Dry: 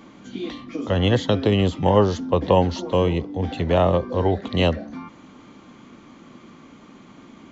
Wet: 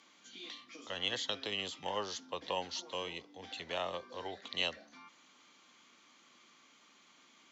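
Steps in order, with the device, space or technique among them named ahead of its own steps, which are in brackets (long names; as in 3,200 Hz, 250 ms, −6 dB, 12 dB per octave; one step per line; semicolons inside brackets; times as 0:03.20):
piezo pickup straight into a mixer (low-pass filter 6,200 Hz 12 dB per octave; first difference)
level +1 dB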